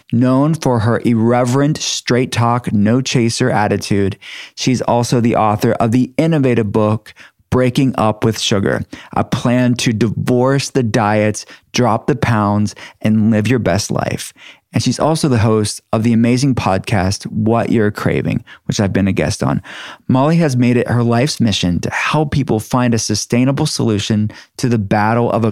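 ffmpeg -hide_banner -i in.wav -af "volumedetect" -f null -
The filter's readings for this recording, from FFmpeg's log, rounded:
mean_volume: -14.5 dB
max_volume: -1.3 dB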